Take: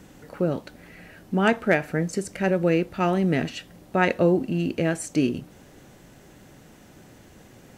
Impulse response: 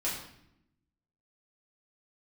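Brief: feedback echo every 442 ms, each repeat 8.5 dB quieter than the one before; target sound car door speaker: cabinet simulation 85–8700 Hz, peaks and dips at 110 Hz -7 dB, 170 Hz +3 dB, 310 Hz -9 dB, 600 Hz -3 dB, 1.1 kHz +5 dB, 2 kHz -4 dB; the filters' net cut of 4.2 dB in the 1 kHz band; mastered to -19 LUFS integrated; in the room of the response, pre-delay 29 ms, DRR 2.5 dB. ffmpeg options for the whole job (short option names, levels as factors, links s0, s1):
-filter_complex "[0:a]equalizer=f=1000:t=o:g=-7,aecho=1:1:442|884|1326|1768:0.376|0.143|0.0543|0.0206,asplit=2[s0][s1];[1:a]atrim=start_sample=2205,adelay=29[s2];[s1][s2]afir=irnorm=-1:irlink=0,volume=0.398[s3];[s0][s3]amix=inputs=2:normalize=0,highpass=85,equalizer=f=110:t=q:w=4:g=-7,equalizer=f=170:t=q:w=4:g=3,equalizer=f=310:t=q:w=4:g=-9,equalizer=f=600:t=q:w=4:g=-3,equalizer=f=1100:t=q:w=4:g=5,equalizer=f=2000:t=q:w=4:g=-4,lowpass=f=8700:w=0.5412,lowpass=f=8700:w=1.3066,volume=1.78"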